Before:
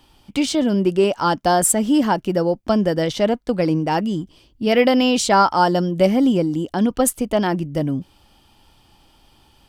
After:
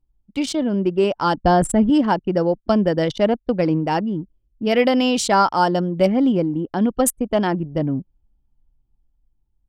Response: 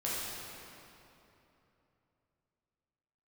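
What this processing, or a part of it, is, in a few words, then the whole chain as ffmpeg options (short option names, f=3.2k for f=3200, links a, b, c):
voice memo with heavy noise removal: -filter_complex "[0:a]asettb=1/sr,asplit=3[a][b][c];[a]atrim=end=1.374[d];[b]atrim=start=1.37:end=1.9,asetpts=PTS-STARTPTS,afade=t=in:d=0.004:c=qsin,afade=t=out:st=0.526:d=0.004:c=qsin,aemphasis=mode=reproduction:type=bsi[e];[c]atrim=start=1.896[f];[d][e]acrossfade=d=0.004:c1=hsin:c2=qsin[g];[g][f]acrossfade=d=0.004:c1=qsin:c2=hsin,anlmdn=251,dynaudnorm=f=120:g=17:m=5.5dB,volume=-3dB"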